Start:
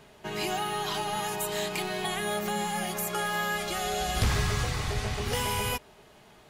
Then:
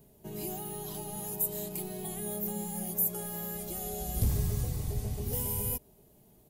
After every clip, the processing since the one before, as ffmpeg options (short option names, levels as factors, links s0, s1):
-af "firequalizer=gain_entry='entry(170,0);entry(1300,-22);entry(13000,11)':delay=0.05:min_phase=1,volume=0.841"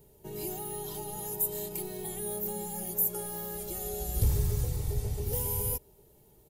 -af "aecho=1:1:2.2:0.51"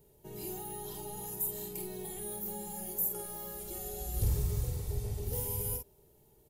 -filter_complex "[0:a]asplit=2[s0][s1];[s1]adelay=49,volume=0.562[s2];[s0][s2]amix=inputs=2:normalize=0,volume=0.562"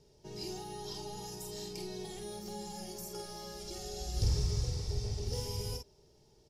-af "lowpass=f=5300:t=q:w=6.3"